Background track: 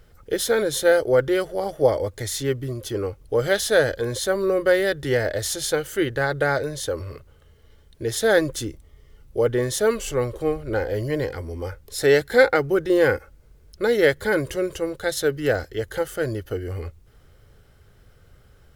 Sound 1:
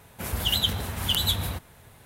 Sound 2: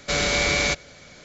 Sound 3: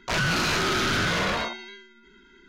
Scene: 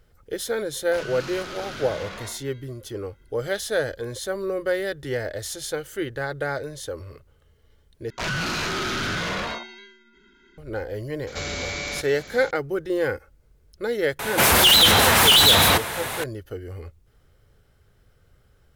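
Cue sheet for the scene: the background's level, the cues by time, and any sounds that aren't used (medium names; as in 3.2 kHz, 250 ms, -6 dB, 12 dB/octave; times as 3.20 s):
background track -6 dB
0.84 s: add 3 -12 dB
8.10 s: replace with 3 -2.5 dB
11.27 s: add 2 -9 dB + level flattener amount 50%
14.19 s: add 1 -2 dB + overdrive pedal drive 36 dB, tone 6.9 kHz, clips at -4 dBFS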